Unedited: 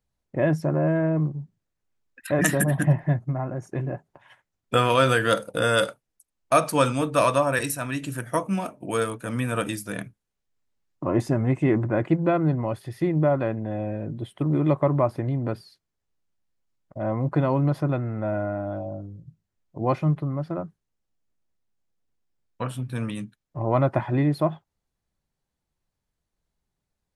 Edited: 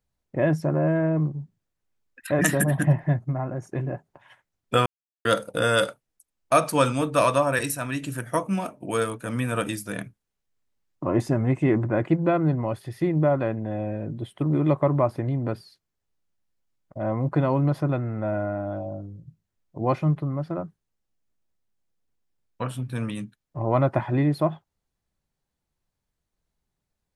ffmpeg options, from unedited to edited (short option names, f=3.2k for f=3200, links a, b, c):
-filter_complex "[0:a]asplit=3[a][b][c];[a]atrim=end=4.86,asetpts=PTS-STARTPTS,afade=t=out:st=4.856:d=0.004:c=hsin[d];[b]atrim=start=4.86:end=5.25,asetpts=PTS-STARTPTS,volume=0[e];[c]atrim=start=5.25,asetpts=PTS-STARTPTS,afade=t=in:d=0.004:c=hsin[f];[d][e][f]concat=n=3:v=0:a=1"